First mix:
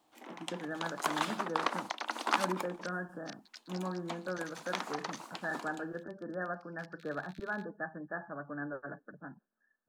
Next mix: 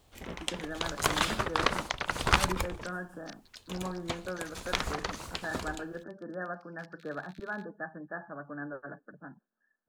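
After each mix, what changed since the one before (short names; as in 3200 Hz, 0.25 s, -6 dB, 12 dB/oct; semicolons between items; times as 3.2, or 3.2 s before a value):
first sound: remove rippled Chebyshev high-pass 220 Hz, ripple 9 dB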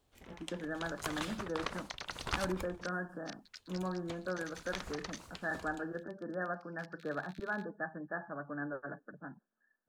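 first sound -12.0 dB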